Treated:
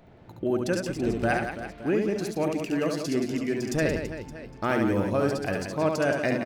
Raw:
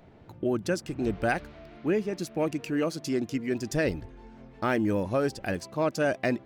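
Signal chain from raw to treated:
reverse bouncing-ball delay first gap 70 ms, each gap 1.5×, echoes 5

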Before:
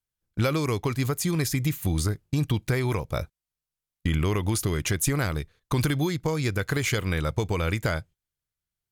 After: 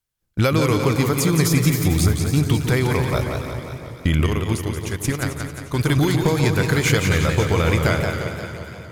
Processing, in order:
delay that swaps between a low-pass and a high-pass 136 ms, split 1,100 Hz, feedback 76%, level −8 dB
0:04.26–0:05.86: noise gate −22 dBFS, range −12 dB
feedback echo with a swinging delay time 176 ms, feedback 57%, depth 114 cents, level −6 dB
level +6 dB

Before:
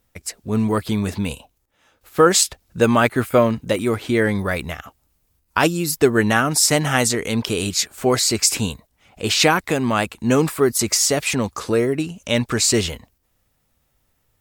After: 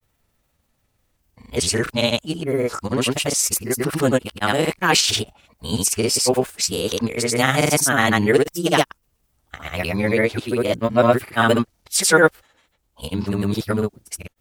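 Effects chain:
played backwards from end to start
formants moved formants +2 semitones
granular cloud, pitch spread up and down by 0 semitones
level +1 dB

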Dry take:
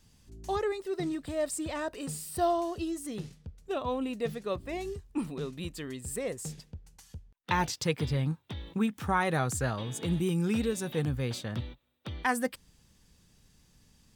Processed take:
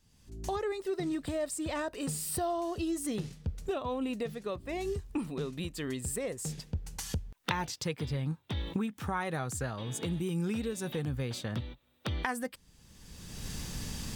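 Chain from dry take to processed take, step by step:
camcorder AGC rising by 29 dB per second
level −6.5 dB

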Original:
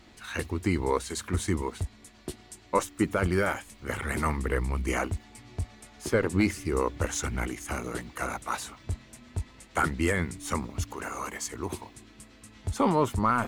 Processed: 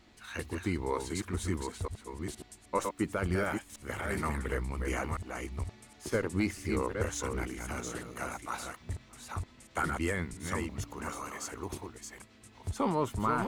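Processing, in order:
delay that plays each chunk backwards 470 ms, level −5 dB
level −6 dB

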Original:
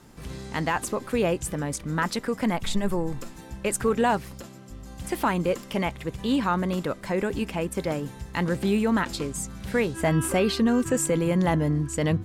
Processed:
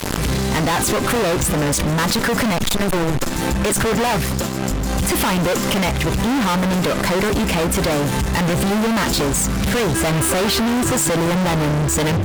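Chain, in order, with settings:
fuzz pedal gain 43 dB, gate −48 dBFS
background raised ahead of every attack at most 26 dB per second
level −3.5 dB

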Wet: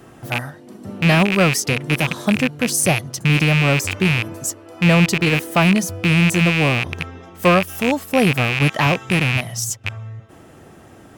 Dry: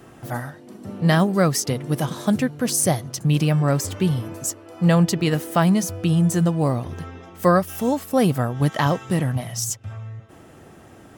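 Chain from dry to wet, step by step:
loose part that buzzes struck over −27 dBFS, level −10 dBFS
level +2 dB

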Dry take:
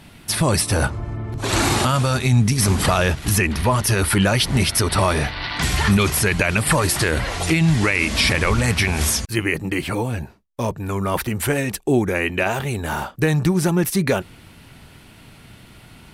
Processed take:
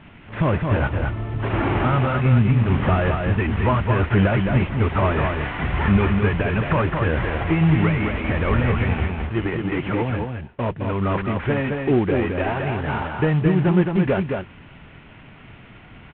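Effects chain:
variable-slope delta modulation 16 kbit/s
on a send: single-tap delay 216 ms −4.5 dB

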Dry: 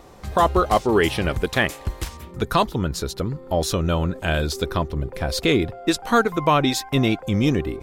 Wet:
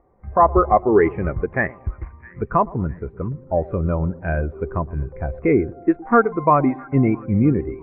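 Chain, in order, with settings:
elliptic low-pass filter 2,200 Hz, stop band 60 dB
on a send: echo with a time of its own for lows and highs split 1,100 Hz, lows 115 ms, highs 660 ms, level −14.5 dB
on the sum: every bin expanded away from the loudest bin 1.5 to 1
level +3 dB

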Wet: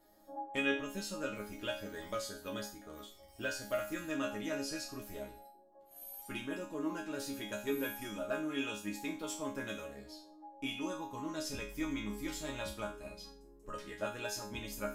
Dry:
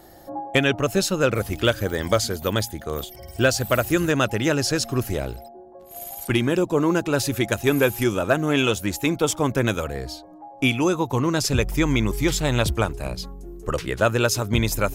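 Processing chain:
resonators tuned to a chord G#3 sus4, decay 0.39 s
level +1 dB

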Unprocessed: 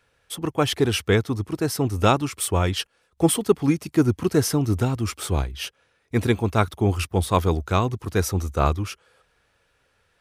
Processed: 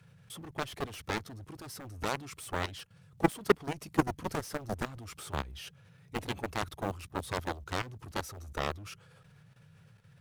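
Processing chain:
mu-law and A-law mismatch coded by mu
noise in a band 94–170 Hz −48 dBFS
harmonic generator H 7 −11 dB, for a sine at −4 dBFS
output level in coarse steps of 13 dB
level −6 dB

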